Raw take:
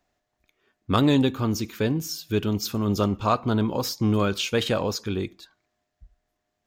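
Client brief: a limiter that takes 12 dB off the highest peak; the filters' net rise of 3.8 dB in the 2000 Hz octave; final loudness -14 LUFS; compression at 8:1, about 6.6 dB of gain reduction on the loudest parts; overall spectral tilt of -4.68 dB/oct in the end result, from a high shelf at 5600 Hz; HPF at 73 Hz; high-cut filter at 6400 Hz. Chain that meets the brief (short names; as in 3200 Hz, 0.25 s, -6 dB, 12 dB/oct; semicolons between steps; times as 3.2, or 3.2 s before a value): HPF 73 Hz; LPF 6400 Hz; bell 2000 Hz +6.5 dB; high shelf 5600 Hz -8 dB; compressor 8:1, threshold -22 dBFS; gain +19 dB; limiter -3.5 dBFS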